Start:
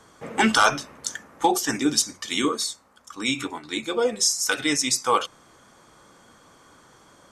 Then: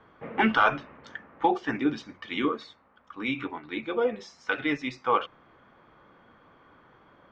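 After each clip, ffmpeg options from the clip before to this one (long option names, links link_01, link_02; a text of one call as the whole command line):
ffmpeg -i in.wav -af "lowpass=frequency=2800:width=0.5412,lowpass=frequency=2800:width=1.3066,volume=-3dB" out.wav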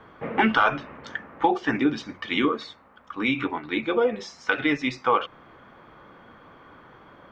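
ffmpeg -i in.wav -af "acompressor=threshold=-28dB:ratio=2,volume=7.5dB" out.wav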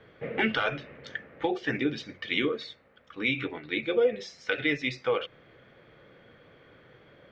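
ffmpeg -i in.wav -af "equalizer=frequency=125:width_type=o:width=1:gain=7,equalizer=frequency=250:width_type=o:width=1:gain=-3,equalizer=frequency=500:width_type=o:width=1:gain=9,equalizer=frequency=1000:width_type=o:width=1:gain=-12,equalizer=frequency=2000:width_type=o:width=1:gain=7,equalizer=frequency=4000:width_type=o:width=1:gain=6,volume=-7.5dB" out.wav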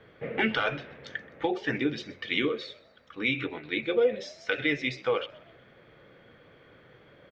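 ffmpeg -i in.wav -filter_complex "[0:a]asplit=4[link_01][link_02][link_03][link_04];[link_02]adelay=127,afreqshift=61,volume=-21dB[link_05];[link_03]adelay=254,afreqshift=122,volume=-27.9dB[link_06];[link_04]adelay=381,afreqshift=183,volume=-34.9dB[link_07];[link_01][link_05][link_06][link_07]amix=inputs=4:normalize=0" out.wav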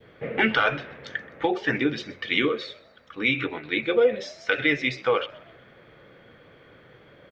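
ffmpeg -i in.wav -af "adynamicequalizer=threshold=0.0112:dfrequency=1300:dqfactor=0.99:tfrequency=1300:tqfactor=0.99:attack=5:release=100:ratio=0.375:range=2:mode=boostabove:tftype=bell,volume=3.5dB" out.wav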